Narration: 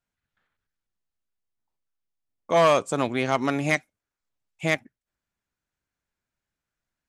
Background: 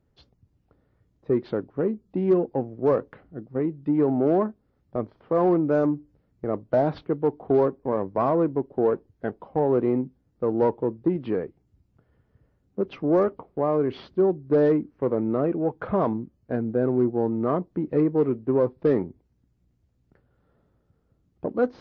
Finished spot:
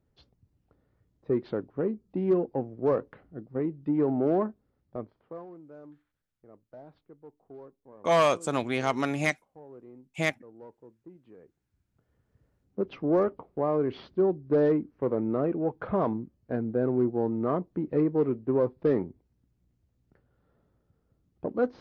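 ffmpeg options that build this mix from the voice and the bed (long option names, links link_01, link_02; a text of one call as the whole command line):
ffmpeg -i stem1.wav -i stem2.wav -filter_complex "[0:a]adelay=5550,volume=-3.5dB[link_01];[1:a]volume=19dB,afade=type=out:start_time=4.6:duration=0.86:silence=0.0749894,afade=type=in:start_time=11.37:duration=1.31:silence=0.0707946[link_02];[link_01][link_02]amix=inputs=2:normalize=0" out.wav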